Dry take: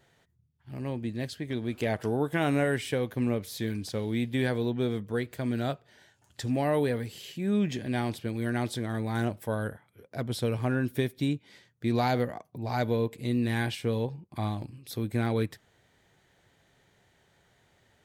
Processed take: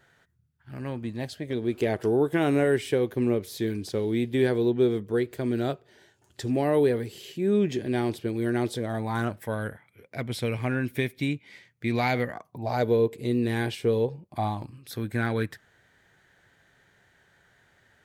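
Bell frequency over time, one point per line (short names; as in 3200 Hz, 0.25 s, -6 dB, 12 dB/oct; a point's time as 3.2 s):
bell +10.5 dB 0.55 oct
0.91 s 1500 Hz
1.65 s 380 Hz
8.67 s 380 Hz
9.51 s 2200 Hz
12.21 s 2200 Hz
12.86 s 410 Hz
14.02 s 410 Hz
14.92 s 1600 Hz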